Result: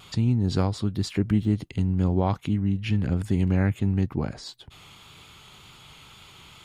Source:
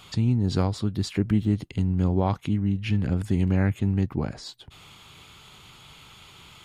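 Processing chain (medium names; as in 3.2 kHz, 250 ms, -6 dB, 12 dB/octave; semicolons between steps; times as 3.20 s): wow and flutter 23 cents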